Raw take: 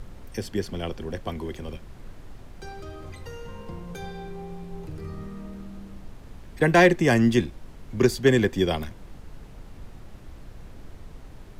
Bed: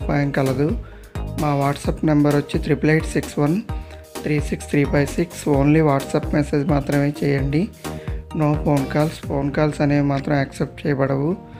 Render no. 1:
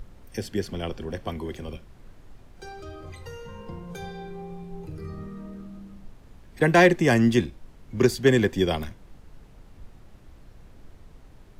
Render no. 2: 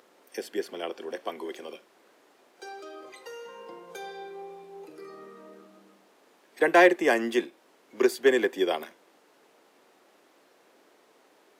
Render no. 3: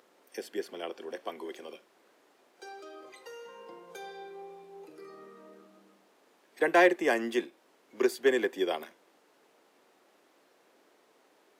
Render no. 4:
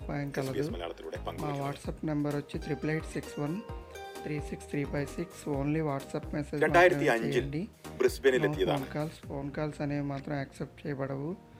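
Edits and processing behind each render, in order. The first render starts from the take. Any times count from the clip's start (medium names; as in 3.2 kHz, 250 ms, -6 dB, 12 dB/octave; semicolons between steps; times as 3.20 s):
noise print and reduce 6 dB
dynamic bell 5.5 kHz, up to -6 dB, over -47 dBFS, Q 0.86; high-pass 340 Hz 24 dB/octave
trim -4 dB
add bed -15.5 dB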